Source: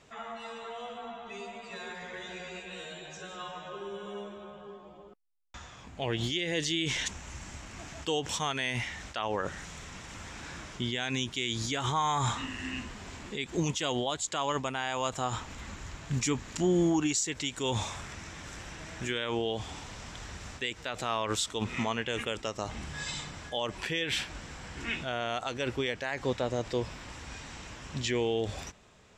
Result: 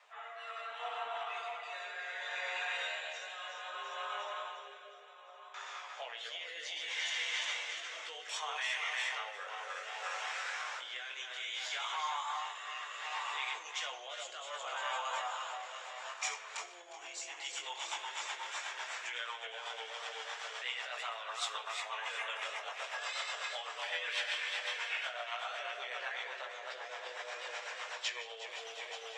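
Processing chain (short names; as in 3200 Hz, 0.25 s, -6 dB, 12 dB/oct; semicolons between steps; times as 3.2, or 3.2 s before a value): regenerating reverse delay 0.177 s, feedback 78%, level -4.5 dB; LPF 1700 Hz 6 dB/oct; compressor 10:1, threshold -33 dBFS, peak gain reduction 13 dB; transient shaper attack -3 dB, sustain +1 dB; limiter -31 dBFS, peak gain reduction 7.5 dB; chorus 0.15 Hz, delay 15.5 ms, depth 7.4 ms; rotary speaker horn 0.65 Hz, later 8 Hz, at 16.07; Bessel high-pass 1100 Hz, order 8; shoebox room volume 460 m³, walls mixed, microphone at 0.41 m; gain +12.5 dB; Opus 32 kbps 48000 Hz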